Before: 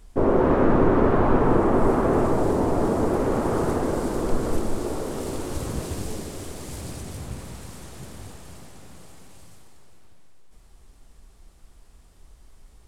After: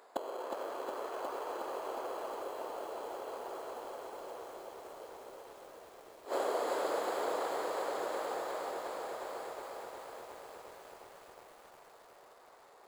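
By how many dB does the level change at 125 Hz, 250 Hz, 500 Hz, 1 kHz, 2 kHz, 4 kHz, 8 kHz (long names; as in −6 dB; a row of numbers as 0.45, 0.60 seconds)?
below −40 dB, −26.0 dB, −13.5 dB, −10.5 dB, −9.5 dB, −6.0 dB, −12.0 dB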